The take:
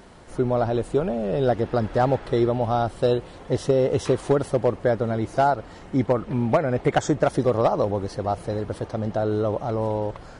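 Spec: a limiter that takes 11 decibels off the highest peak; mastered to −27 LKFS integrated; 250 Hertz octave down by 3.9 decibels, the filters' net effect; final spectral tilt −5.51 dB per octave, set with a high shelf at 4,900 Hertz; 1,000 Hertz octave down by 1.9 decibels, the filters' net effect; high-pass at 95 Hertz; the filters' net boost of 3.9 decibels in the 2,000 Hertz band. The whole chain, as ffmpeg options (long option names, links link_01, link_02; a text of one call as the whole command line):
ffmpeg -i in.wav -af "highpass=95,equalizer=frequency=250:width_type=o:gain=-5,equalizer=frequency=1000:width_type=o:gain=-4,equalizer=frequency=2000:width_type=o:gain=6,highshelf=frequency=4900:gain=7.5,volume=1.5dB,alimiter=limit=-15.5dB:level=0:latency=1" out.wav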